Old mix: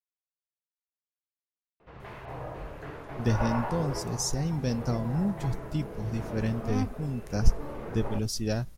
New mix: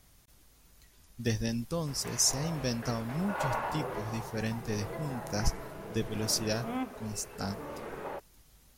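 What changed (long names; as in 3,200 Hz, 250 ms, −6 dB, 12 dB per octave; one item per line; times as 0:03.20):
speech: entry −2.00 s
master: add spectral tilt +2 dB per octave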